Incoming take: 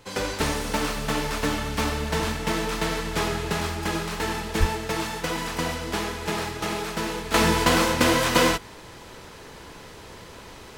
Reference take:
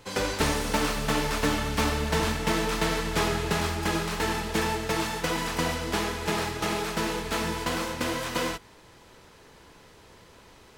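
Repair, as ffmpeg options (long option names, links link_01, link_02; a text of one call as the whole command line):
ffmpeg -i in.wav -filter_complex "[0:a]asplit=3[link_01][link_02][link_03];[link_01]afade=type=out:start_time=4.59:duration=0.02[link_04];[link_02]highpass=frequency=140:width=0.5412,highpass=frequency=140:width=1.3066,afade=type=in:start_time=4.59:duration=0.02,afade=type=out:start_time=4.71:duration=0.02[link_05];[link_03]afade=type=in:start_time=4.71:duration=0.02[link_06];[link_04][link_05][link_06]amix=inputs=3:normalize=0,asetnsamples=nb_out_samples=441:pad=0,asendcmd='7.34 volume volume -9.5dB',volume=0dB" out.wav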